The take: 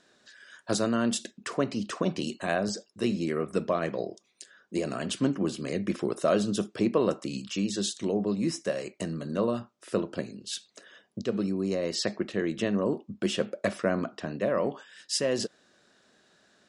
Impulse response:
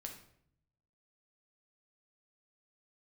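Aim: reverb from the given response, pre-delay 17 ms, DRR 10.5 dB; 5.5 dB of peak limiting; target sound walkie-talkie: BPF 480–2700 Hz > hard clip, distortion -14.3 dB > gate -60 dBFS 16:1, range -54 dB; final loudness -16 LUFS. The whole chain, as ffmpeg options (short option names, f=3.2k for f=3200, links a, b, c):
-filter_complex "[0:a]alimiter=limit=-18dB:level=0:latency=1,asplit=2[a][b];[1:a]atrim=start_sample=2205,adelay=17[c];[b][c]afir=irnorm=-1:irlink=0,volume=-7dB[d];[a][d]amix=inputs=2:normalize=0,highpass=480,lowpass=2.7k,asoftclip=type=hard:threshold=-27dB,agate=range=-54dB:threshold=-60dB:ratio=16,volume=21dB"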